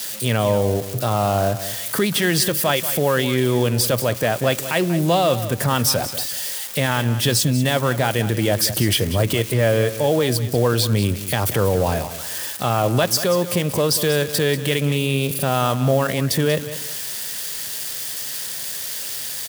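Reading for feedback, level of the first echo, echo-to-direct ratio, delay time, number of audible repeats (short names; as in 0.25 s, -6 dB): 27%, -13.0 dB, -12.5 dB, 0.188 s, 2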